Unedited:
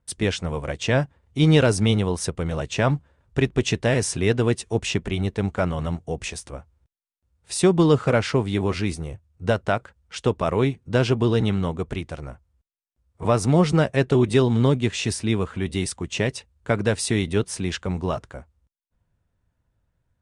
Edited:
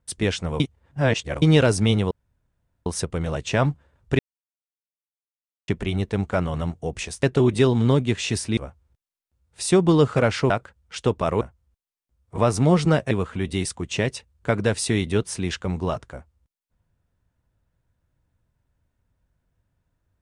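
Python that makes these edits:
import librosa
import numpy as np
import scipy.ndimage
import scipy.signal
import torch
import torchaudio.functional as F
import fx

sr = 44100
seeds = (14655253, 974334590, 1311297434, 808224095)

y = fx.edit(x, sr, fx.reverse_span(start_s=0.6, length_s=0.82),
    fx.insert_room_tone(at_s=2.11, length_s=0.75),
    fx.silence(start_s=3.44, length_s=1.49),
    fx.cut(start_s=8.41, length_s=1.29),
    fx.cut(start_s=10.61, length_s=1.67),
    fx.move(start_s=13.98, length_s=1.34, to_s=6.48), tone=tone)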